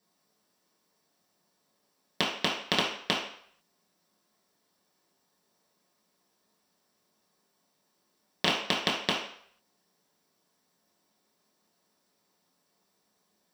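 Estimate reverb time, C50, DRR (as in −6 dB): 0.60 s, 4.5 dB, −5.5 dB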